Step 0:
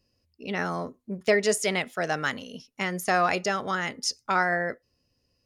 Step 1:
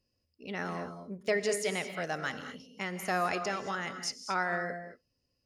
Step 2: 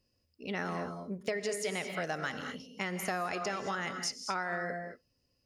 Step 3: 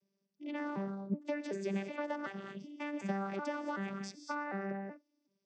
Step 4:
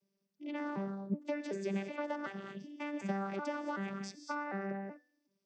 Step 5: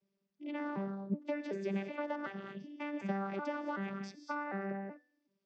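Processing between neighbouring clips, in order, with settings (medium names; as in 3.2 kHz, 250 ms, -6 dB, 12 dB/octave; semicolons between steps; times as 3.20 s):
gated-style reverb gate 250 ms rising, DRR 8.5 dB; trim -7.5 dB
compression 6:1, threshold -34 dBFS, peak gain reduction 10 dB; trim +3 dB
vocoder on a broken chord bare fifth, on G3, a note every 376 ms; trim -1.5 dB
de-hum 251.4 Hz, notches 32
low-pass 4.1 kHz 12 dB/octave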